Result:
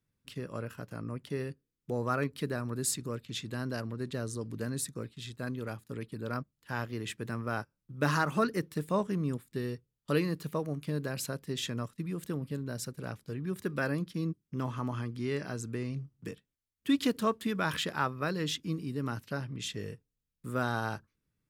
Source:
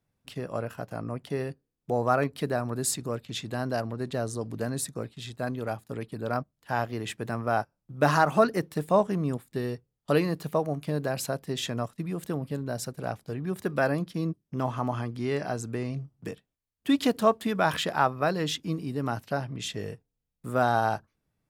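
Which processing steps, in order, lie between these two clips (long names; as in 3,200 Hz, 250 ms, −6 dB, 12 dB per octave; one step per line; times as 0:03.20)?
parametric band 720 Hz −12.5 dB 0.63 octaves
level −3 dB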